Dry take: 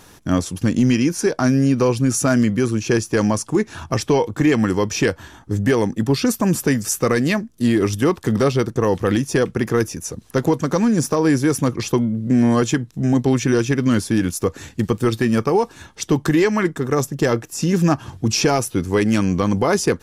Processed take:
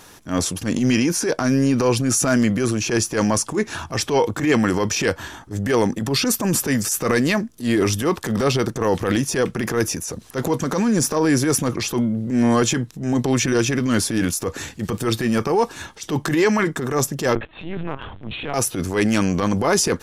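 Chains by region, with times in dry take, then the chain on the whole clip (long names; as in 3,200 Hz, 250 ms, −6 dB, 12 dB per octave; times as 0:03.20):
0:17.35–0:18.54: downward compressor 12 to 1, threshold −20 dBFS + linear-prediction vocoder at 8 kHz pitch kept
whole clip: low-shelf EQ 280 Hz −6.5 dB; transient designer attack −10 dB, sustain +5 dB; level +2.5 dB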